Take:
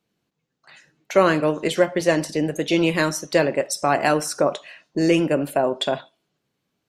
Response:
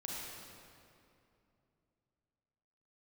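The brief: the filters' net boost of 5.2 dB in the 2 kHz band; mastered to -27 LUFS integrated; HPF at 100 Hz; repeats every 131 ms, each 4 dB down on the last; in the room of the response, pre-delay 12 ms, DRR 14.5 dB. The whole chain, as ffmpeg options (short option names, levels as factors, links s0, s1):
-filter_complex "[0:a]highpass=100,equalizer=f=2000:t=o:g=6.5,aecho=1:1:131|262|393|524|655|786|917|1048|1179:0.631|0.398|0.25|0.158|0.0994|0.0626|0.0394|0.0249|0.0157,asplit=2[s0][s1];[1:a]atrim=start_sample=2205,adelay=12[s2];[s1][s2]afir=irnorm=-1:irlink=0,volume=0.178[s3];[s0][s3]amix=inputs=2:normalize=0,volume=0.335"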